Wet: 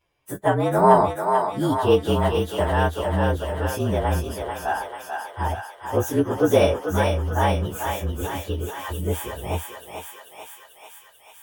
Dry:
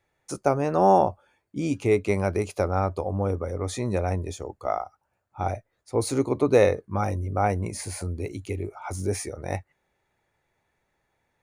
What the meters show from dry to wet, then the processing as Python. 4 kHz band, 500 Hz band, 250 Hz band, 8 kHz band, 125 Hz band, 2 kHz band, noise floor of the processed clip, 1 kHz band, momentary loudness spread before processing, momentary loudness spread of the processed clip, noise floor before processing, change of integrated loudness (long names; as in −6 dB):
+9.0 dB, +3.0 dB, +3.0 dB, +0.5 dB, +3.5 dB, +6.5 dB, −51 dBFS, +4.5 dB, 14 LU, 14 LU, −76 dBFS, +3.5 dB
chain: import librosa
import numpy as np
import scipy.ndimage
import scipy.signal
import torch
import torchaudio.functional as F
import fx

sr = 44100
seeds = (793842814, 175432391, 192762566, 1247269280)

y = fx.partial_stretch(x, sr, pct=114)
y = fx.echo_thinned(y, sr, ms=440, feedback_pct=72, hz=640.0, wet_db=-3.5)
y = y * 10.0 ** (5.0 / 20.0)